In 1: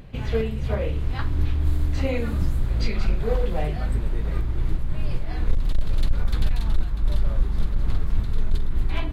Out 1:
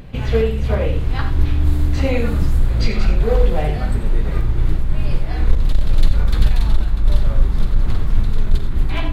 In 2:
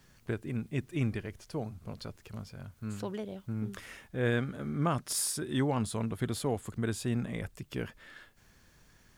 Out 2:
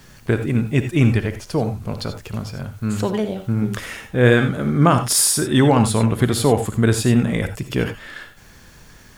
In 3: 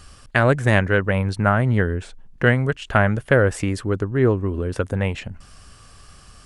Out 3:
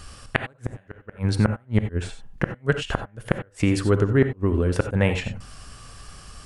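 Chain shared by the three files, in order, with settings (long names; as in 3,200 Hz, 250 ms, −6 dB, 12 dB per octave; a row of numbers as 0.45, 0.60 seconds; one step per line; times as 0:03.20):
gate with flip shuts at −8 dBFS, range −40 dB
reverb whose tail is shaped and stops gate 110 ms rising, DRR 8 dB
normalise the peak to −1.5 dBFS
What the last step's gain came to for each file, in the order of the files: +6.0, +15.0, +3.0 decibels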